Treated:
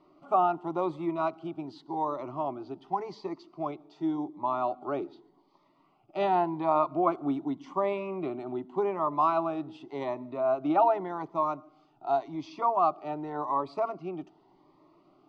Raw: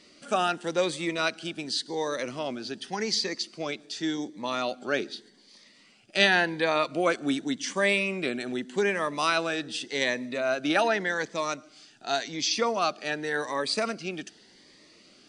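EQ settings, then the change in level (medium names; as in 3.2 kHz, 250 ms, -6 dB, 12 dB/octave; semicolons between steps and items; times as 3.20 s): resonant low-pass 1.1 kHz, resonance Q 2.5; static phaser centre 330 Hz, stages 8; 0.0 dB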